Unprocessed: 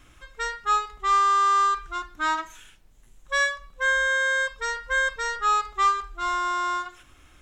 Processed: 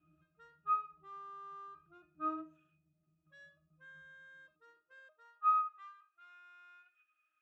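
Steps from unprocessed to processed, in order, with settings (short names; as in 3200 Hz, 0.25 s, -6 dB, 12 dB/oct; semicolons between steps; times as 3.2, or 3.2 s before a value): 4.56–5.65 power-law curve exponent 1.4; octave resonator D#, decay 0.25 s; high-pass sweep 160 Hz -> 1800 Hz, 4.29–5.88; gain -4 dB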